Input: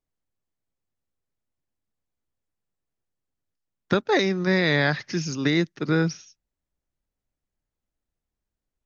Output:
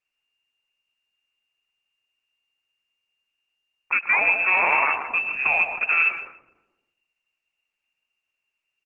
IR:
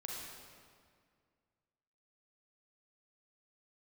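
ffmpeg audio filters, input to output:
-filter_complex "[0:a]asplit=2[link_01][link_02];[link_02]adelay=100,highpass=300,lowpass=3400,asoftclip=type=hard:threshold=-17.5dB,volume=-20dB[link_03];[link_01][link_03]amix=inputs=2:normalize=0,lowpass=frequency=2400:width_type=q:width=0.5098,lowpass=frequency=2400:width_type=q:width=0.6013,lowpass=frequency=2400:width_type=q:width=0.9,lowpass=frequency=2400:width_type=q:width=2.563,afreqshift=-2800,alimiter=limit=-14.5dB:level=0:latency=1:release=42,asplit=2[link_04][link_05];[link_05]adelay=145,lowpass=frequency=1100:poles=1,volume=-5.5dB,asplit=2[link_06][link_07];[link_07]adelay=145,lowpass=frequency=1100:poles=1,volume=0.48,asplit=2[link_08][link_09];[link_09]adelay=145,lowpass=frequency=1100:poles=1,volume=0.48,asplit=2[link_10][link_11];[link_11]adelay=145,lowpass=frequency=1100:poles=1,volume=0.48,asplit=2[link_12][link_13];[link_13]adelay=145,lowpass=frequency=1100:poles=1,volume=0.48,asplit=2[link_14][link_15];[link_15]adelay=145,lowpass=frequency=1100:poles=1,volume=0.48[link_16];[link_06][link_08][link_10][link_12][link_14][link_16]amix=inputs=6:normalize=0[link_17];[link_04][link_17]amix=inputs=2:normalize=0,volume=3dB" -ar 48000 -c:a libopus -b:a 10k

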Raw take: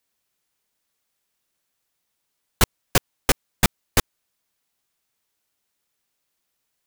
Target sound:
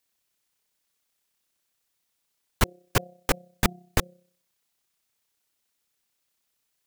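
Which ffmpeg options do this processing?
ffmpeg -i in.wav -filter_complex "[0:a]bandreject=frequency=177.9:width_type=h:width=4,bandreject=frequency=355.8:width_type=h:width=4,bandreject=frequency=533.7:width_type=h:width=4,bandreject=frequency=711.6:width_type=h:width=4,acrossover=split=2300[link_01][link_02];[link_01]tremolo=f=32:d=0.621[link_03];[link_02]alimiter=limit=-18dB:level=0:latency=1:release=33[link_04];[link_03][link_04]amix=inputs=2:normalize=0" out.wav

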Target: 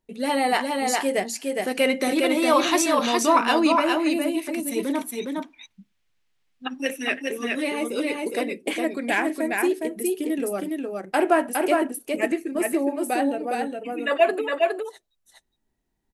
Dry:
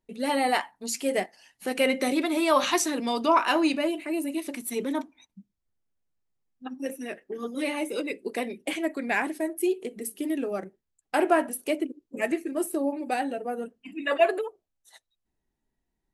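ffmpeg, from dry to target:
ffmpeg -i in.wav -filter_complex "[0:a]asplit=3[link_01][link_02][link_03];[link_01]afade=type=out:start_time=5.01:duration=0.02[link_04];[link_02]equalizer=frequency=2700:width=0.51:gain=14.5,afade=type=in:start_time=5.01:duration=0.02,afade=type=out:start_time=7.21:duration=0.02[link_05];[link_03]afade=type=in:start_time=7.21:duration=0.02[link_06];[link_04][link_05][link_06]amix=inputs=3:normalize=0,aecho=1:1:412:0.708,volume=2.5dB" out.wav

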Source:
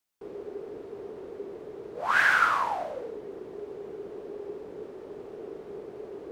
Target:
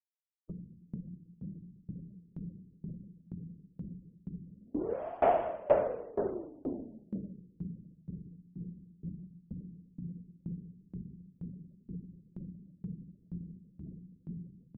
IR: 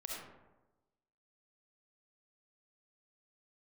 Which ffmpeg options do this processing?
-filter_complex "[0:a]lowshelf=frequency=240:gain=7.5,asetrate=18846,aresample=44100,bandreject=frequency=50:width_type=h:width=6,bandreject=frequency=100:width_type=h:width=6,bandreject=frequency=150:width_type=h:width=6,asplit=2[link_01][link_02];[link_02]adelay=361,lowpass=frequency=2000:poles=1,volume=-12dB,asplit=2[link_03][link_04];[link_04]adelay=361,lowpass=frequency=2000:poles=1,volume=0.41,asplit=2[link_05][link_06];[link_06]adelay=361,lowpass=frequency=2000:poles=1,volume=0.41,asplit=2[link_07][link_08];[link_08]adelay=361,lowpass=frequency=2000:poles=1,volume=0.41[link_09];[link_03][link_05][link_07][link_09]amix=inputs=4:normalize=0[link_10];[link_01][link_10]amix=inputs=2:normalize=0,acompressor=mode=upward:threshold=-34dB:ratio=2.5,afftfilt=real='re*gte(hypot(re,im),0.00891)':imag='im*gte(hypot(re,im),0.00891)':win_size=1024:overlap=0.75,asuperstop=centerf=3900:order=4:qfactor=2.8,aeval=exprs='val(0)*pow(10,-27*if(lt(mod(2.1*n/s,1),2*abs(2.1)/1000),1-mod(2.1*n/s,1)/(2*abs(2.1)/1000),(mod(2.1*n/s,1)-2*abs(2.1)/1000)/(1-2*abs(2.1)/1000))/20)':channel_layout=same"

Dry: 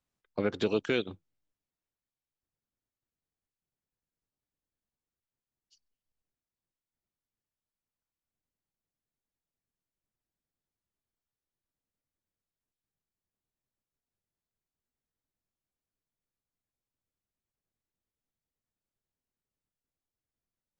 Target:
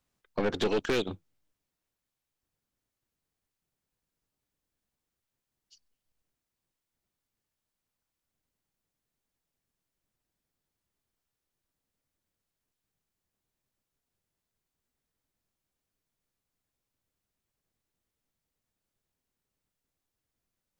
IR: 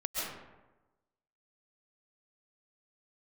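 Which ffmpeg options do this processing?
-af "aeval=exprs='(tanh(31.6*val(0)+0.35)-tanh(0.35))/31.6':channel_layout=same,volume=7.5dB"

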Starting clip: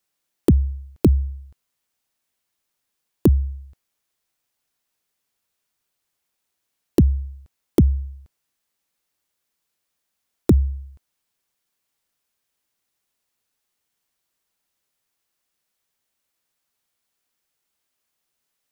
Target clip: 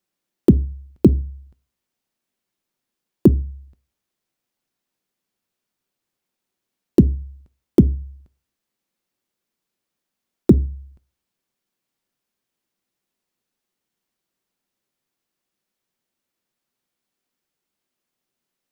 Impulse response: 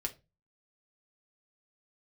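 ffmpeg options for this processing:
-filter_complex "[0:a]equalizer=frequency=250:width_type=o:width=1.9:gain=9,asplit=2[link_01][link_02];[1:a]atrim=start_sample=2205,lowpass=7500[link_03];[link_02][link_03]afir=irnorm=-1:irlink=0,volume=-8.5dB[link_04];[link_01][link_04]amix=inputs=2:normalize=0,volume=-6dB"

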